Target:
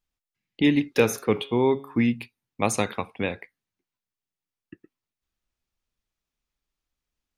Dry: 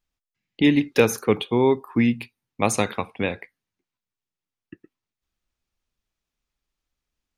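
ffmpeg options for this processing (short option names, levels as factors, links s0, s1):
-filter_complex "[0:a]asettb=1/sr,asplit=3[s0][s1][s2];[s0]atrim=end=0.924[s3];[s1]atrim=start=0.92:end=2.1,asetpts=PTS-STARTPTS,afade=t=in:d=0.004:c=qsin,afade=t=out:st=1.176:d=0.004:c=qsin,bandreject=f=138.2:t=h:w=4,bandreject=f=276.4:t=h:w=4,bandreject=f=414.6:t=h:w=4,bandreject=f=552.8:t=h:w=4,bandreject=f=691:t=h:w=4,bandreject=f=829.2:t=h:w=4,bandreject=f=967.4:t=h:w=4,bandreject=f=1105.6:t=h:w=4,bandreject=f=1243.8:t=h:w=4,bandreject=f=1382:t=h:w=4,bandreject=f=1520.2:t=h:w=4,bandreject=f=1658.4:t=h:w=4,bandreject=f=1796.6:t=h:w=4,bandreject=f=1934.8:t=h:w=4,bandreject=f=2073:t=h:w=4,bandreject=f=2211.2:t=h:w=4,bandreject=f=2349.4:t=h:w=4,bandreject=f=2487.6:t=h:w=4,bandreject=f=2625.8:t=h:w=4,bandreject=f=2764:t=h:w=4,bandreject=f=2902.2:t=h:w=4,bandreject=f=3040.4:t=h:w=4,bandreject=f=3178.6:t=h:w=4,bandreject=f=3316.8:t=h:w=4,bandreject=f=3455:t=h:w=4,bandreject=f=3593.2:t=h:w=4,bandreject=f=3731.4:t=h:w=4,bandreject=f=3869.6:t=h:w=4,bandreject=f=4007.8:t=h:w=4,bandreject=f=4146:t=h:w=4,bandreject=f=4284.2:t=h:w=4,bandreject=f=4422.4:t=h:w=4,bandreject=f=4560.6:t=h:w=4,bandreject=f=4698.8:t=h:w=4,bandreject=f=4837:t=h:w=4,bandreject=f=4975.2:t=h:w=4,bandreject=f=5113.4:t=h:w=4[s4];[s2]atrim=start=2.096[s5];[s3][s4]acrossfade=d=0.004:c1=hsin:c2=qsin[s6];[s6][s5]acrossfade=d=0.004:c1=qsin:c2=hsin,volume=0.75"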